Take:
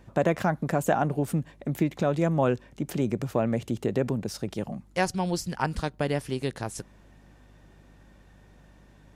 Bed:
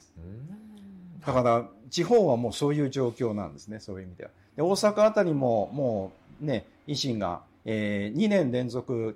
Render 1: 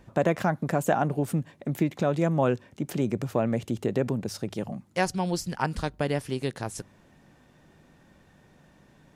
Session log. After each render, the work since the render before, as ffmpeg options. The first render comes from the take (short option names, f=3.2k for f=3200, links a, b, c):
-af "bandreject=f=50:t=h:w=4,bandreject=f=100:t=h:w=4"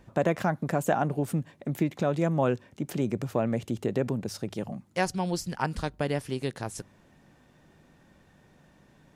-af "volume=-1.5dB"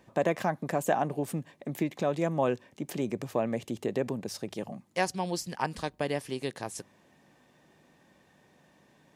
-af "highpass=f=280:p=1,bandreject=f=1.4k:w=7.1"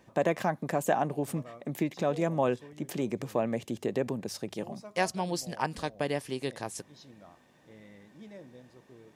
-filter_complex "[1:a]volume=-24.5dB[a];[0:a][a]amix=inputs=2:normalize=0"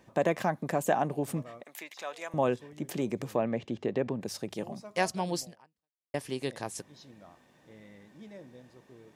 -filter_complex "[0:a]asettb=1/sr,asplit=3[a][b][c];[a]atrim=end=1.634[d];[b]atrim=start=1.63:end=2.34,asetpts=PTS-STARTPTS,afade=t=in:d=0.004:c=qsin,afade=t=out:st=0.706:d=0.004:c=qsin,highpass=1.1k[e];[c]atrim=start=2.336[f];[d][e]acrossfade=d=0.004:c1=hsin:c2=qsin[g];[g][f]acrossfade=d=0.004:c1=qsin:c2=hsin,asettb=1/sr,asplit=3[h][i][j];[h]atrim=end=3.364[k];[i]atrim=start=3.36:end=4.21,asetpts=PTS-STARTPTS,afade=t=in:d=0.004:c=qsin,afade=t=out:st=0.846:d=0.004:c=qsin,lowpass=3.7k[l];[j]atrim=start=4.206[m];[k][l]acrossfade=d=0.004:c1=hsin:c2=qsin[n];[n][m]acrossfade=d=0.004:c1=qsin:c2=hsin,asplit=2[o][p];[o]atrim=end=6.14,asetpts=PTS-STARTPTS,afade=t=out:st=5.42:d=0.72:c=exp[q];[p]atrim=start=6.14,asetpts=PTS-STARTPTS,afade=t=in:d=0.004:c=hsin[r];[q][r]concat=n=2:v=0:a=1"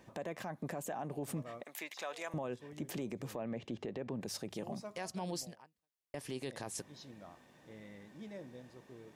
-af "acompressor=threshold=-33dB:ratio=10,alimiter=level_in=7dB:limit=-24dB:level=0:latency=1:release=10,volume=-7dB"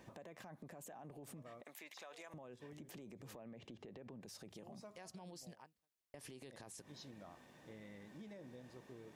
-af "alimiter=level_in=17dB:limit=-24dB:level=0:latency=1:release=85,volume=-17dB,acompressor=threshold=-50dB:ratio=6"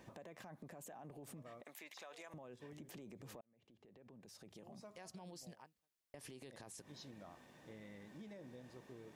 -filter_complex "[0:a]asplit=2[a][b];[a]atrim=end=3.41,asetpts=PTS-STARTPTS,afade=t=out:st=3.406:d=0.004:c=hsin[c];[b]atrim=start=3.41,asetpts=PTS-STARTPTS,afade=t=in:d=1.62[d];[c][d]concat=n=2:v=0:a=1"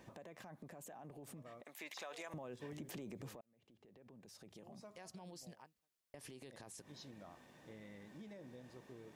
-filter_complex "[0:a]asettb=1/sr,asplit=3[a][b][c];[a]atrim=end=1.794[d];[b]atrim=start=1.79:end=3.29,asetpts=PTS-STARTPTS,afade=t=in:d=0.004:c=qsin,afade=t=out:st=1.496:d=0.004:c=qsin,acontrast=38[e];[c]atrim=start=3.286[f];[d][e]acrossfade=d=0.004:c1=hsin:c2=qsin[g];[g][f]acrossfade=d=0.004:c1=qsin:c2=hsin"